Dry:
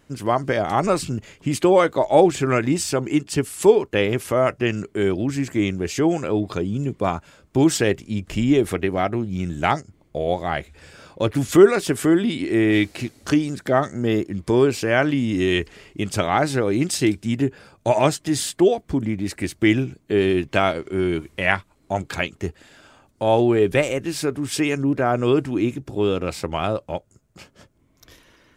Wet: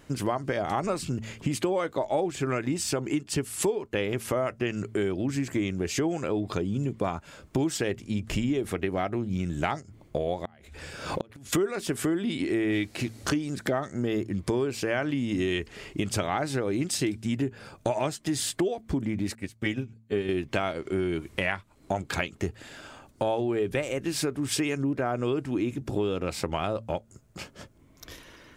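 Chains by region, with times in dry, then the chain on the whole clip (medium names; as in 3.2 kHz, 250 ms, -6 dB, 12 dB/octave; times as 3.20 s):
10.45–11.53 s: inverted gate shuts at -14 dBFS, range -35 dB + swell ahead of each attack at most 80 dB/s
19.35–20.29 s: comb of notches 340 Hz + upward expansion 2.5:1, over -29 dBFS
whole clip: de-hum 111.9 Hz, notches 2; compression 5:1, threshold -30 dBFS; trim +4 dB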